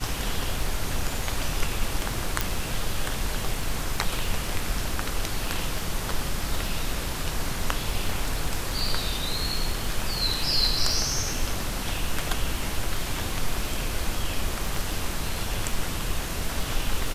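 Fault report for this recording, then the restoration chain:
crackle 21/s -29 dBFS
2.41 pop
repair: de-click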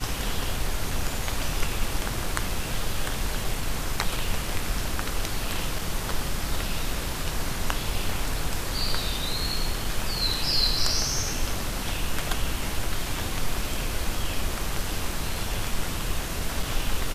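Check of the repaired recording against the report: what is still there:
none

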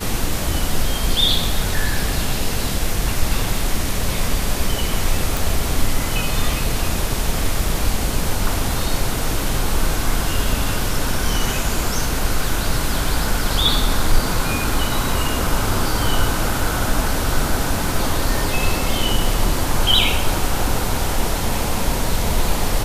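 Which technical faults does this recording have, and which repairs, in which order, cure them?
5.37 pop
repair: de-click

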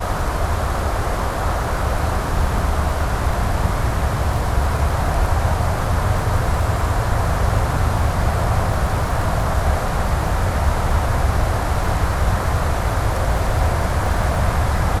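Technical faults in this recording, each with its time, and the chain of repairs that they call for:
crackle 21/s -25 dBFS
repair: de-click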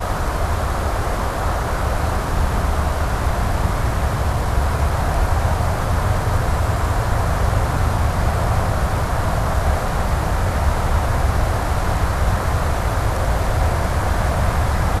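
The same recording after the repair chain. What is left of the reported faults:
none

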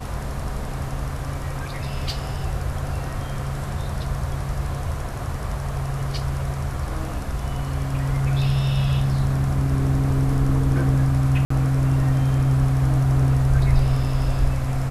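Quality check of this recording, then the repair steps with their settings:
11.45–11.5 gap 54 ms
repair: interpolate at 11.45, 54 ms

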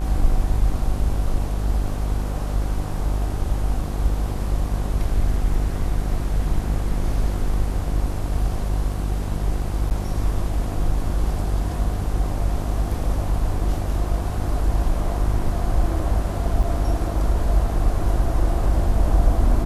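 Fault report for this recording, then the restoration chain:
buzz 50 Hz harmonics 32 -25 dBFS
9.9–9.91 gap 9.2 ms
16.63 gap 4.9 ms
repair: de-hum 50 Hz, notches 32; interpolate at 9.9, 9.2 ms; interpolate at 16.63, 4.9 ms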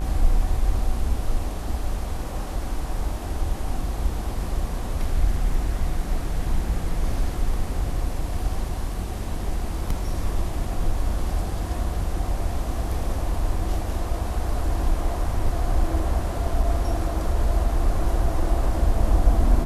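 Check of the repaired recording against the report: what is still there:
none

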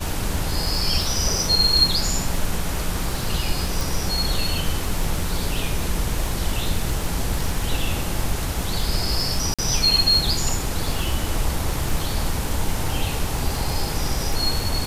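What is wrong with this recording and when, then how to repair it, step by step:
crackle 37/s -25 dBFS
3.81 pop
9.54–9.59 gap 46 ms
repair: de-click; interpolate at 9.54, 46 ms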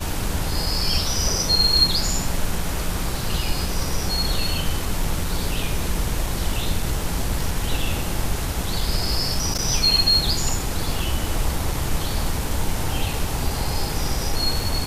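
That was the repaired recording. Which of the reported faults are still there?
none

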